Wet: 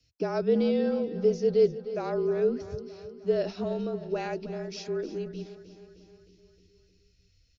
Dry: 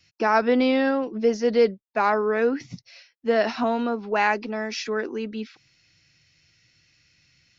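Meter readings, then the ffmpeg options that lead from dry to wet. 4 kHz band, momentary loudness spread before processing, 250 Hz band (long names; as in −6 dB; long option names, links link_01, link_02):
−9.5 dB, 12 LU, −5.5 dB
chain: -af "equalizer=frequency=125:width_type=o:width=1:gain=8,equalizer=frequency=500:width_type=o:width=1:gain=7,equalizer=frequency=1000:width_type=o:width=1:gain=-11,equalizer=frequency=2000:width_type=o:width=1:gain=-10,aecho=1:1:309|618|927|1236|1545|1854:0.2|0.118|0.0695|0.041|0.0242|0.0143,afreqshift=-36,asubboost=boost=6:cutoff=52,volume=-7dB"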